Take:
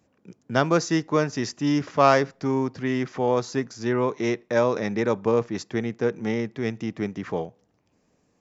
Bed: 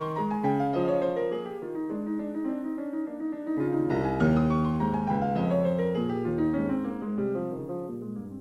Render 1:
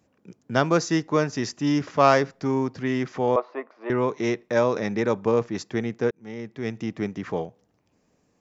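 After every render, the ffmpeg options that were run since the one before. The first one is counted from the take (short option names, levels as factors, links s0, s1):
-filter_complex "[0:a]asettb=1/sr,asplit=3[s0][s1][s2];[s0]atrim=end=3.364[s3];[s1]atrim=start=3.36:end=3.9,asetpts=PTS-STARTPTS,afade=t=in:d=0.004:c=qsin,afade=t=out:st=0.536:d=0.004:c=qsin,highpass=f=380:w=0.5412,highpass=f=380:w=1.3066,equalizer=f=410:t=q:w=4:g=-4,equalizer=f=620:t=q:w=4:g=9,equalizer=f=1100:t=q:w=4:g=9,equalizer=f=1600:t=q:w=4:g=-9,lowpass=f=2300:w=0.5412,lowpass=f=2300:w=1.3066[s4];[s2]atrim=start=3.896[s5];[s3][s4]acrossfade=d=0.004:c1=hsin:c2=qsin[s6];[s6][s5]acrossfade=d=0.004:c1=qsin:c2=hsin,asplit=2[s7][s8];[s7]atrim=end=6.11,asetpts=PTS-STARTPTS,afade=t=out:st=6.106:d=0.004:c=hsin[s9];[s8]atrim=start=6.11,asetpts=PTS-STARTPTS,afade=t=in:d=0.72[s10];[s9][s10]concat=n=2:v=0:a=1"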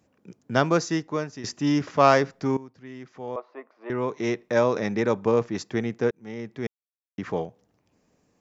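-filter_complex "[0:a]asplit=5[s0][s1][s2][s3][s4];[s0]atrim=end=1.44,asetpts=PTS-STARTPTS,afade=t=out:st=0.64:d=0.8:silence=0.237137[s5];[s1]atrim=start=1.44:end=2.57,asetpts=PTS-STARTPTS,afade=t=in:d=0.004:c=hsin:silence=0.237137,afade=t=out:st=1.126:d=0.004:c=hsin:silence=0.133352[s6];[s2]atrim=start=2.57:end=6.67,asetpts=PTS-STARTPTS,afade=t=in:d=1.89:c=qua:silence=0.133352,afade=t=out:st=4.096:d=0.004:c=hsin[s7];[s3]atrim=start=6.67:end=7.18,asetpts=PTS-STARTPTS,volume=0[s8];[s4]atrim=start=7.18,asetpts=PTS-STARTPTS,afade=t=in:d=0.004:c=hsin[s9];[s5][s6][s7][s8][s9]concat=n=5:v=0:a=1"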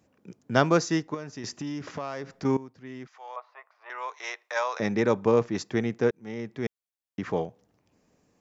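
-filter_complex "[0:a]asettb=1/sr,asplit=3[s0][s1][s2];[s0]atrim=end=1.144[s3];[s1]atrim=start=1.14:end=2.45,asetpts=PTS-STARTPTS,afade=t=in:d=0.004:c=qsin,afade=t=out:st=1.306:d=0.004:c=qsin,acompressor=threshold=0.0282:ratio=6:attack=3.2:release=140:knee=1:detection=peak[s4];[s2]atrim=start=2.446[s5];[s3][s4]acrossfade=d=0.004:c1=hsin:c2=qsin[s6];[s6][s5]acrossfade=d=0.004:c1=qsin:c2=hsin,asettb=1/sr,asplit=3[s7][s8][s9];[s7]atrim=end=3.074[s10];[s8]atrim=start=3.07:end=4.8,asetpts=PTS-STARTPTS,afade=t=in:d=0.004:c=qsin,afade=t=out:st=1.726:d=0.004:c=qsin,highpass=f=760:w=0.5412,highpass=f=760:w=1.3066[s11];[s9]atrim=start=4.796[s12];[s10][s11]acrossfade=d=0.004:c1=hsin:c2=qsin[s13];[s13][s12]acrossfade=d=0.004:c1=qsin:c2=hsin"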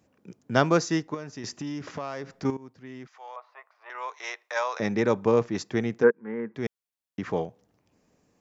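-filter_complex "[0:a]asettb=1/sr,asplit=3[s0][s1][s2];[s0]atrim=end=2.504[s3];[s1]atrim=start=2.5:end=3.95,asetpts=PTS-STARTPTS,afade=t=in:d=0.004:c=qsin,afade=t=out:st=1.446:d=0.004:c=qsin,acompressor=threshold=0.0141:ratio=2:attack=3.2:release=140:knee=1:detection=peak[s4];[s2]atrim=start=3.946[s5];[s3][s4]acrossfade=d=0.004:c1=hsin:c2=qsin[s6];[s6][s5]acrossfade=d=0.004:c1=qsin:c2=hsin,asplit=3[s7][s8][s9];[s7]afade=t=out:st=6.02:d=0.02[s10];[s8]highpass=210,equalizer=f=220:t=q:w=4:g=6,equalizer=f=480:t=q:w=4:g=7,equalizer=f=680:t=q:w=4:g=-10,equalizer=f=1000:t=q:w=4:g=9,equalizer=f=1600:t=q:w=4:g=10,lowpass=f=2000:w=0.5412,lowpass=f=2000:w=1.3066,afade=t=in:st=6.02:d=0.02,afade=t=out:st=6.54:d=0.02[s11];[s9]afade=t=in:st=6.54:d=0.02[s12];[s10][s11][s12]amix=inputs=3:normalize=0"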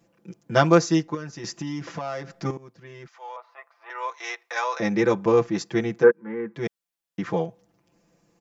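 -af "aecho=1:1:5.9:0.98"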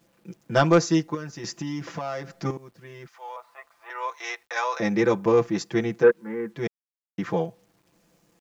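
-af "asoftclip=type=tanh:threshold=0.501,acrusher=bits=10:mix=0:aa=0.000001"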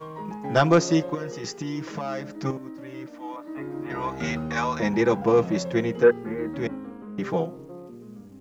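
-filter_complex "[1:a]volume=0.447[s0];[0:a][s0]amix=inputs=2:normalize=0"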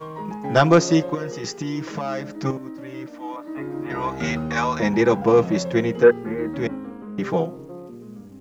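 -af "volume=1.5"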